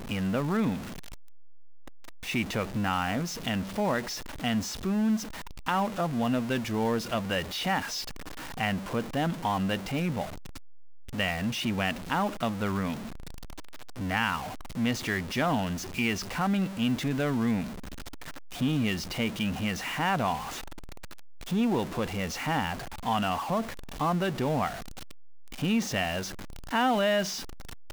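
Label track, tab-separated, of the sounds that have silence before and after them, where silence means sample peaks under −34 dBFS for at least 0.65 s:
2.270000	10.250000	sound
11.140000	13.060000	sound
13.990000	17.670000	sound
18.610000	20.580000	sound
21.520000	24.740000	sound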